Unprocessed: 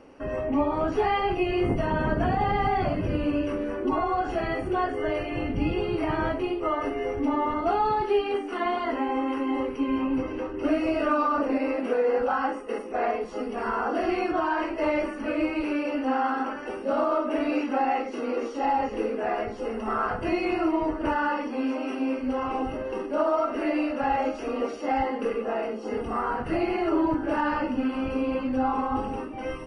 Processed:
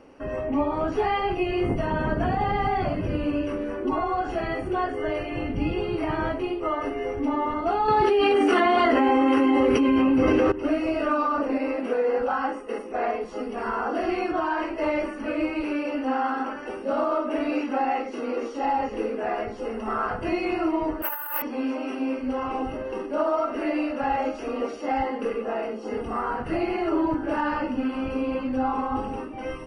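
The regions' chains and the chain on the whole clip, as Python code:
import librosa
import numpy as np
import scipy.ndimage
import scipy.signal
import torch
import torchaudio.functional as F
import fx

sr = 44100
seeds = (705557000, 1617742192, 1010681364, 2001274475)

y = fx.chain(x, sr, fx.highpass(hz=46.0, slope=12),
    fx.notch(hz=960.0, q=7.0),
    fx.env_flatten(amount_pct=100), at=(7.88, 10.52))
y = fx.chain(y, sr, fx.highpass(hz=920.0, slope=12),
    fx.over_compress(threshold_db=-33.0, ratio=-0.5),
    fx.resample_bad(factor=3, down='none', up='zero_stuff'), at=(21.02, 21.42))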